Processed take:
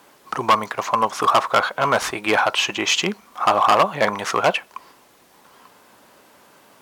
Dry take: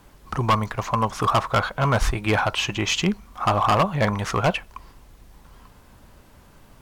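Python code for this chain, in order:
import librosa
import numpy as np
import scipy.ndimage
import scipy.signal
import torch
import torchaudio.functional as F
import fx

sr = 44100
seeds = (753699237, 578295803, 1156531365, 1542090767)

y = scipy.signal.sosfilt(scipy.signal.butter(2, 340.0, 'highpass', fs=sr, output='sos'), x)
y = y * librosa.db_to_amplitude(4.5)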